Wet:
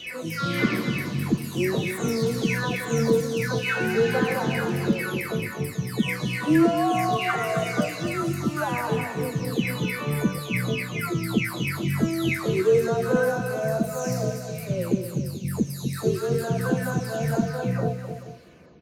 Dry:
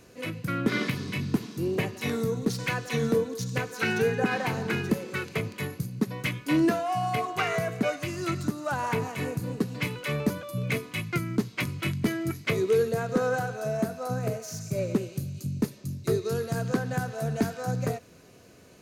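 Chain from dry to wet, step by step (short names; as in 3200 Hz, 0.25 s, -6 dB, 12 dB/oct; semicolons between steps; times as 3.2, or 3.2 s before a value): spectral delay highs early, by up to 0.595 s; on a send: tapped delay 0.257/0.432 s -9/-15 dB; on the sum: gain +4.5 dB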